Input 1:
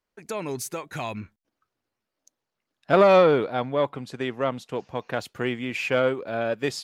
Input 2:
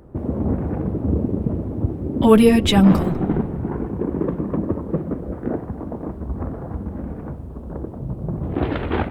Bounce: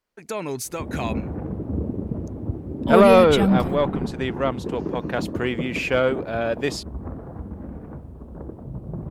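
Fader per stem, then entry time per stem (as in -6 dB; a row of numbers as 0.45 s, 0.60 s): +2.0 dB, -6.0 dB; 0.00 s, 0.65 s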